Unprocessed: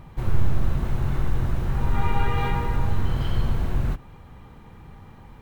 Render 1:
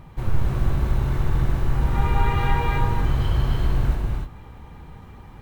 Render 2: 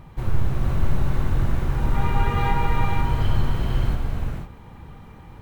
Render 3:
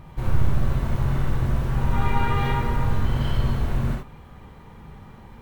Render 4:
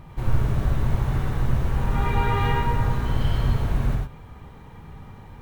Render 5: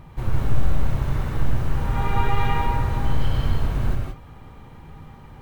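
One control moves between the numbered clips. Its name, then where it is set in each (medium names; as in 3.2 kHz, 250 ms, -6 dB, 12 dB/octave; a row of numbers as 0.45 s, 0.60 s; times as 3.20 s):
gated-style reverb, gate: 330 ms, 530 ms, 90 ms, 130 ms, 200 ms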